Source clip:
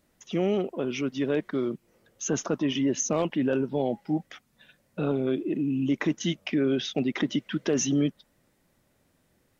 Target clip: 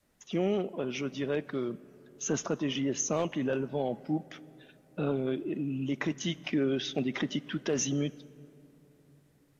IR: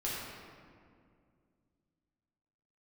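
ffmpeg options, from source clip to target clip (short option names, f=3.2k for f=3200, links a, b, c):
-filter_complex "[0:a]adynamicequalizer=threshold=0.0126:dfrequency=290:dqfactor=1.7:tfrequency=290:tqfactor=1.7:attack=5:release=100:ratio=0.375:range=2.5:mode=cutabove:tftype=bell,acontrast=61,asoftclip=type=hard:threshold=-10.5dB,asplit=2[a][b];[1:a]atrim=start_sample=2205,asetrate=24696,aresample=44100,adelay=9[c];[b][c]afir=irnorm=-1:irlink=0,volume=-27.5dB[d];[a][d]amix=inputs=2:normalize=0,volume=-9dB" -ar 32000 -c:a aac -b:a 64k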